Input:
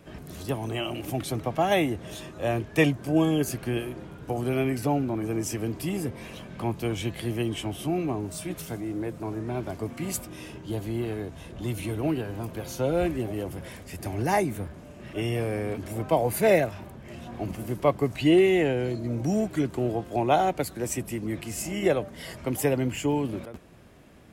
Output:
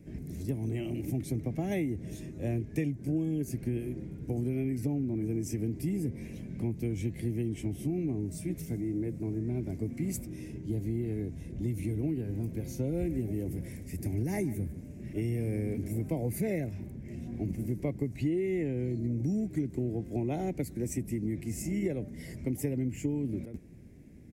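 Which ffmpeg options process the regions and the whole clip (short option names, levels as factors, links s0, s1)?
-filter_complex "[0:a]asettb=1/sr,asplit=3[s0][s1][s2];[s0]atrim=end=12.874[s3];[s1]atrim=start=12.87:end=16.13,asetpts=PTS-STARTPTS,afade=t=in:d=0.004:c=qsin,afade=t=out:st=3.256:d=0.004:c=qsin,highshelf=f=9700:g=7,aecho=1:1:149:0.158,atrim=end_sample=143766[s4];[s2]atrim=start=16.126[s5];[s3][s4]acrossfade=d=0.004:c1=hsin:c2=qsin[s6];[s6][s5]acrossfade=d=0.004:c1=qsin:c2=hsin,firequalizer=gain_entry='entry(260,0);entry(630,-16);entry(1200,-27);entry(2100,-8);entry(3000,-21);entry(5700,-10)':delay=0.05:min_phase=1,acompressor=threshold=0.0316:ratio=6,volume=1.33"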